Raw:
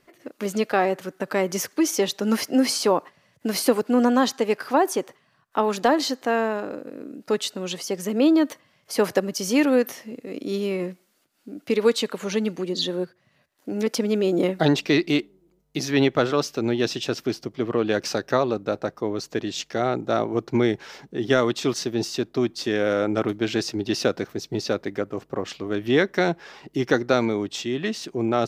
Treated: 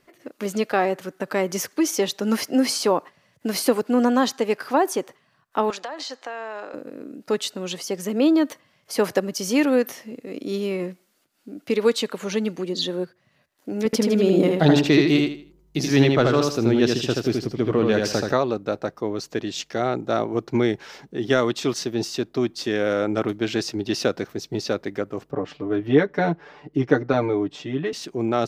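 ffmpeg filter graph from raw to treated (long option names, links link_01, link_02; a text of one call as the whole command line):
ffmpeg -i in.wav -filter_complex "[0:a]asettb=1/sr,asplit=3[link_01][link_02][link_03];[link_01]atrim=end=5.704[link_04];[link_02]atrim=start=5.7:end=6.74,asetpts=PTS-STARTPTS,afade=type=in:duration=0.004:curve=qsin,afade=type=out:start_time=1.036:duration=0.004:curve=qsin,highpass=200,acrossover=split=500 8000:gain=0.178 1 0.0794[link_05][link_06][link_07];[link_05][link_06][link_07]amix=inputs=3:normalize=0,acompressor=threshold=-28dB:ratio=16:attack=3.2:release=140:knee=1:detection=peak[link_08];[link_03]atrim=start=6.736[link_09];[link_04][link_08]acrossfade=duration=0.004:curve1=hsin:curve2=qsin[link_10];[link_10][link_09]acrossfade=duration=0.004:curve1=qsin:curve2=hsin,asettb=1/sr,asplit=3[link_11][link_12][link_13];[link_11]atrim=end=13.854[link_14];[link_12]atrim=start=13.85:end=18.33,asetpts=PTS-STARTPTS,afade=type=in:duration=0.004:curve=qsin,afade=type=out:start_time=4.476:duration=0.004:curve=qsin,lowshelf=frequency=180:gain=9,aecho=1:1:79|158|237|316:0.668|0.18|0.0487|0.0132,atrim=end_sample=197568[link_15];[link_13]atrim=start=18.326[link_16];[link_14][link_15]acrossfade=duration=0.004:curve1=hsin:curve2=qsin[link_17];[link_17][link_16]acrossfade=duration=0.004:curve1=qsin:curve2=hsin,asettb=1/sr,asplit=3[link_18][link_19][link_20];[link_18]atrim=end=25.314[link_21];[link_19]atrim=start=25.31:end=27.93,asetpts=PTS-STARTPTS,afade=type=in:duration=0.004:curve=qsin,afade=type=out:start_time=2.616:duration=0.004:curve=qsin,lowpass=frequency=1100:poles=1,aecho=1:1:6.8:0.9,atrim=end_sample=115542[link_22];[link_20]atrim=start=27.926[link_23];[link_21][link_22]acrossfade=duration=0.004:curve1=hsin:curve2=qsin[link_24];[link_24][link_23]acrossfade=duration=0.004:curve1=qsin:curve2=hsin" out.wav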